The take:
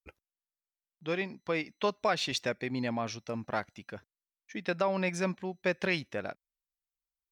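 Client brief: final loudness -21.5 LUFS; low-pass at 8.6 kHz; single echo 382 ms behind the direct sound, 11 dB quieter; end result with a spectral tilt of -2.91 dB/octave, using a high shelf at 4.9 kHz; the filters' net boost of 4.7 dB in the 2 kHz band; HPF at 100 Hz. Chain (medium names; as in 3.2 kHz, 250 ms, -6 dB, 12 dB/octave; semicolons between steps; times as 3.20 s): high-pass 100 Hz; low-pass 8.6 kHz; peaking EQ 2 kHz +7 dB; treble shelf 4.9 kHz -7 dB; delay 382 ms -11 dB; trim +10 dB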